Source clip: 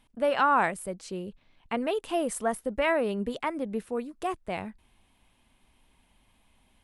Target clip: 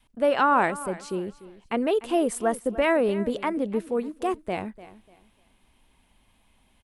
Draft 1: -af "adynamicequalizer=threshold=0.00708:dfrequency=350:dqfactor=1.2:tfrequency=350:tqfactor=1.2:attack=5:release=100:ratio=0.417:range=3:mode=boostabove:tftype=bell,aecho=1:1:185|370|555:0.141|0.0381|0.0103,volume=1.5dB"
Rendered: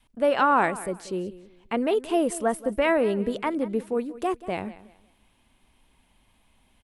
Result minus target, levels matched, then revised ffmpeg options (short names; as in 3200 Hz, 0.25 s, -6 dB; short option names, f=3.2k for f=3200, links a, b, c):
echo 0.111 s early
-af "adynamicequalizer=threshold=0.00708:dfrequency=350:dqfactor=1.2:tfrequency=350:tqfactor=1.2:attack=5:release=100:ratio=0.417:range=3:mode=boostabove:tftype=bell,aecho=1:1:296|592|888:0.141|0.0381|0.0103,volume=1.5dB"